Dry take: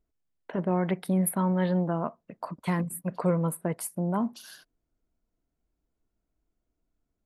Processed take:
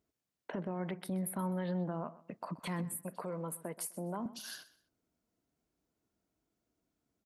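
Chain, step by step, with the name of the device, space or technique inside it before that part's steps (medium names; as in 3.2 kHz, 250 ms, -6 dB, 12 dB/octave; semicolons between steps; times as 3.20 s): broadcast voice chain (high-pass 110 Hz 12 dB/octave; de-esser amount 35%; compression 3:1, threshold -36 dBFS, peak gain reduction 12 dB; peaking EQ 5.6 kHz +2.5 dB; peak limiter -30.5 dBFS, peak gain reduction 8 dB); 2.95–4.26 s: high-pass 230 Hz 12 dB/octave; feedback delay 127 ms, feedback 26%, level -18 dB; trim +1.5 dB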